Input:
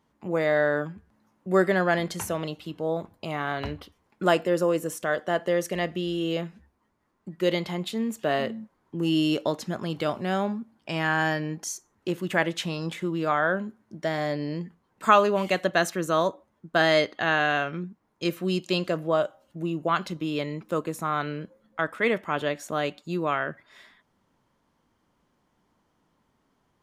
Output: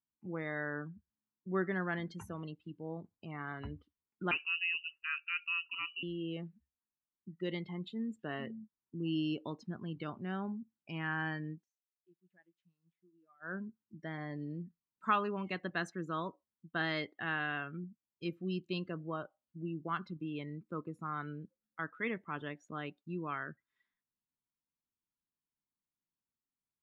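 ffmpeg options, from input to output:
-filter_complex "[0:a]asettb=1/sr,asplit=3[a][b][c];[a]atrim=end=4.314[d];[b]atrim=start=4.31:end=6.03,asetpts=PTS-STARTPTS,afade=t=in:d=0.004:c=qsin,afade=t=out:st=1.716:d=0.004:c=qsin,lowpass=f=2.6k:t=q:w=0.5098,lowpass=f=2.6k:t=q:w=0.6013,lowpass=f=2.6k:t=q:w=0.9,lowpass=f=2.6k:t=q:w=2.563,afreqshift=-3100[e];[c]atrim=start=6.026[f];[d][e]acrossfade=d=0.004:c1=hsin:c2=qsin[g];[g][f]acrossfade=d=0.004:c1=qsin:c2=hsin,asplit=3[h][i][j];[h]atrim=end=11.66,asetpts=PTS-STARTPTS,afade=t=out:st=11.5:d=0.16:silence=0.0668344[k];[i]atrim=start=11.66:end=13.4,asetpts=PTS-STARTPTS,volume=-23.5dB[l];[j]atrim=start=13.4,asetpts=PTS-STARTPTS,afade=t=in:d=0.16:silence=0.0668344[m];[k][l][m]concat=n=3:v=0:a=1,afftdn=nr=22:nf=-35,lowpass=f=2.4k:p=1,equalizer=f=600:t=o:w=0.84:g=-13,volume=-8.5dB"

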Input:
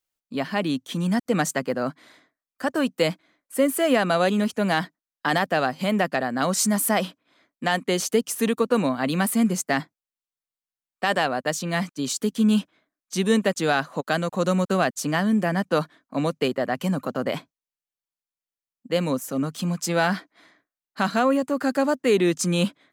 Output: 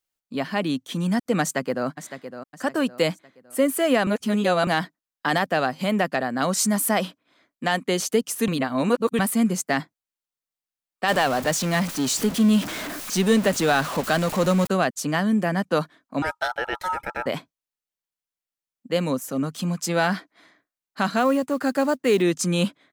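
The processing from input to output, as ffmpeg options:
-filter_complex "[0:a]asplit=2[a][b];[b]afade=t=in:st=1.41:d=0.01,afade=t=out:st=1.87:d=0.01,aecho=0:1:560|1120|1680|2240:0.281838|0.112735|0.0450941|0.0180377[c];[a][c]amix=inputs=2:normalize=0,asettb=1/sr,asplit=3[d][e][f];[d]atrim=end=11.084[g];[e]atrim=start=11.08:end=14.67,asetpts=PTS-STARTPTS,afade=t=in:d=0.004:c=qsin,afade=t=out:st=3.586:d=0.004:c=qsin,aeval=exprs='val(0)+0.5*0.0531*sgn(val(0))':c=same[h];[f]atrim=start=14.666[i];[g][h]acrossfade=d=0.004:c1=hsin:c2=qsin[j];[j][i]acrossfade=d=0.004:c1=qsin:c2=hsin,asettb=1/sr,asplit=3[k][l][m];[k]atrim=end=16.224[n];[l]atrim=start=16.22:end=17.26,asetpts=PTS-STARTPTS,afade=t=in:d=0.004:c=qsin,afade=t=out:st=1.036:d=0.004:c=qsin,aeval=exprs='val(0)*sin(2*PI*1100*n/s)':c=same[o];[m]atrim=start=17.256[p];[n][o]acrossfade=d=0.004:c1=hsin:c2=qsin[q];[q][p]acrossfade=d=0.004:c1=qsin:c2=hsin,asettb=1/sr,asplit=3[r][s][t];[r]atrim=end=21.194[u];[s]atrim=start=21.19:end=22.22,asetpts=PTS-STARTPTS,afade=t=in:d=0.004:c=qsin,afade=t=out:st=1.026:d=0.004:c=qsin,acrusher=bits=7:mode=log:mix=0:aa=0.000001[v];[t]atrim=start=22.216[w];[u][v]acrossfade=d=0.004:c1=hsin:c2=qsin[x];[x][w]acrossfade=d=0.004:c1=qsin:c2=hsin,asplit=5[y][z][aa][ab][ac];[y]atrim=end=4.072[ad];[z]atrim=start=4.068:end=4.672,asetpts=PTS-STARTPTS,areverse[ae];[aa]atrim=start=4.668:end=8.482[af];[ab]atrim=start=8.478:end=9.192,asetpts=PTS-STARTPTS,areverse[ag];[ac]atrim=start=9.188[ah];[ad][ae]acrossfade=d=0.004:c1=hsin:c2=hsin[ai];[ai][af]acrossfade=d=0.004:c1=hsin:c2=hsin[aj];[aj][ag]acrossfade=d=0.004:c1=hsin:c2=hsin[ak];[ak][ah]acrossfade=d=0.004:c1=hsin:c2=hsin"

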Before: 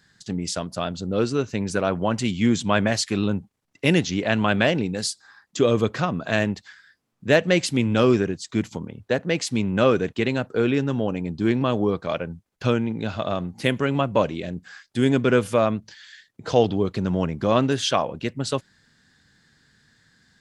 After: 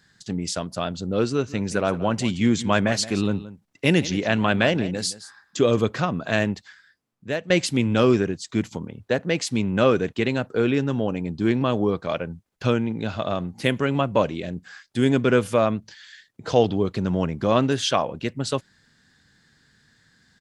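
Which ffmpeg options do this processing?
-filter_complex "[0:a]asplit=3[a][b][c];[a]afade=t=out:st=1.46:d=0.02[d];[b]aecho=1:1:173:0.158,afade=t=in:st=1.46:d=0.02,afade=t=out:st=5.78:d=0.02[e];[c]afade=t=in:st=5.78:d=0.02[f];[d][e][f]amix=inputs=3:normalize=0,asplit=2[g][h];[g]atrim=end=7.5,asetpts=PTS-STARTPTS,afade=t=out:st=6.52:d=0.98:silence=0.211349[i];[h]atrim=start=7.5,asetpts=PTS-STARTPTS,afade=t=in:d=0.004:c=hsin:silence=0.211349[j];[i][j]concat=n=2:v=0:a=1"

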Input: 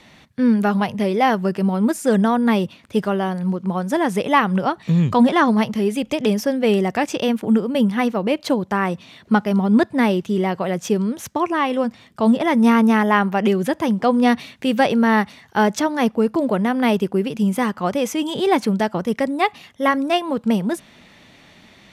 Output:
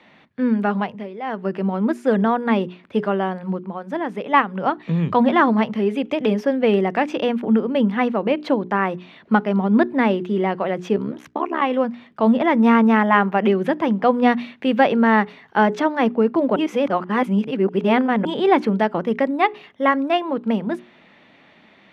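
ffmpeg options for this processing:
-filter_complex "[0:a]asplit=3[a][b][c];[a]afade=t=out:st=3.59:d=0.02[d];[b]agate=range=-6dB:threshold=-17dB:ratio=16:release=100:detection=peak,afade=t=in:st=3.59:d=0.02,afade=t=out:st=4.6:d=0.02[e];[c]afade=t=in:st=4.6:d=0.02[f];[d][e][f]amix=inputs=3:normalize=0,asettb=1/sr,asplit=3[g][h][i];[g]atrim=end=10.964[j];[h]atrim=start=10.96:end=11.62,asetpts=PTS-STARTPTS,afade=t=in:d=0.004:c=qsin,afade=t=out:st=0.656:d=0.004:c=qsin,tremolo=f=70:d=0.947[k];[i]atrim=start=11.616[l];[j][k]acrossfade=d=0.004:c1=hsin:c2=qsin[m];[m][l]acrossfade=d=0.004:c1=qsin:c2=hsin,asplit=5[n][o][p][q][r];[n]atrim=end=1.08,asetpts=PTS-STARTPTS,afade=t=out:st=0.78:d=0.3:silence=0.237137[s];[o]atrim=start=1.08:end=1.23,asetpts=PTS-STARTPTS,volume=-12.5dB[t];[p]atrim=start=1.23:end=16.562,asetpts=PTS-STARTPTS,afade=t=in:d=0.3:silence=0.237137[u];[q]atrim=start=16.558:end=18.252,asetpts=PTS-STARTPTS,areverse[v];[r]atrim=start=18.248[w];[s][t][u]concat=n=3:v=0:a=1[x];[x][v]acrossfade=d=0.004:c1=hsin:c2=hsin[y];[y][w]acrossfade=d=0.004:c1=hsin:c2=hsin,acrossover=split=160 3400:gain=0.178 1 0.0794[z][aa][ab];[z][aa][ab]amix=inputs=3:normalize=0,bandreject=f=60:t=h:w=6,bandreject=f=120:t=h:w=6,bandreject=f=180:t=h:w=6,bandreject=f=240:t=h:w=6,bandreject=f=300:t=h:w=6,bandreject=f=360:t=h:w=6,bandreject=f=420:t=h:w=6,dynaudnorm=f=140:g=31:m=11.5dB,volume=-1dB"

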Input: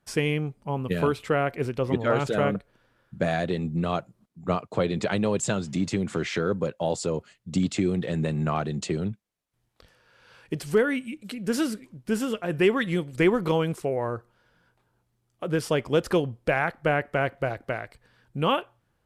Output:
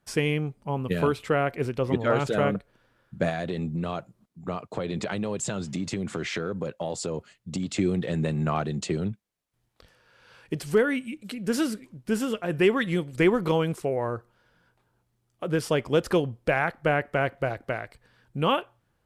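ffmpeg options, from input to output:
-filter_complex "[0:a]asettb=1/sr,asplit=3[a][b][c];[a]atrim=end=3.294[d];[b]atrim=start=3.29:end=7.79,asetpts=PTS-STARTPTS,afade=t=in:d=0.004:c=qsin,afade=t=out:st=4.496:d=0.004:c=qsin,acompressor=threshold=-25dB:ratio=6:attack=3.2:release=140:knee=1:detection=peak[e];[c]atrim=start=7.786[f];[d][e]acrossfade=d=0.004:c1=hsin:c2=qsin[g];[g][f]acrossfade=d=0.004:c1=qsin:c2=hsin"

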